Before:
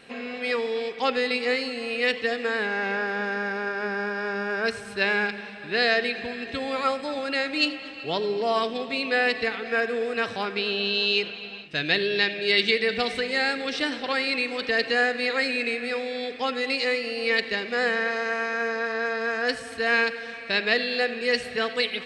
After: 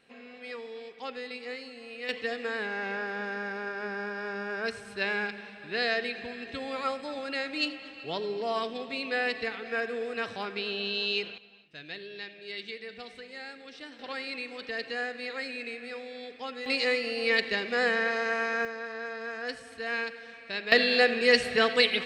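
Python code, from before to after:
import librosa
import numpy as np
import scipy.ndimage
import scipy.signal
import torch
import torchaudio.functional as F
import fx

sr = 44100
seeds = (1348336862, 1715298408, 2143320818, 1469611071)

y = fx.gain(x, sr, db=fx.steps((0.0, -14.0), (2.09, -6.5), (11.38, -18.0), (13.99, -11.0), (16.66, -2.0), (18.65, -10.0), (20.72, 2.5)))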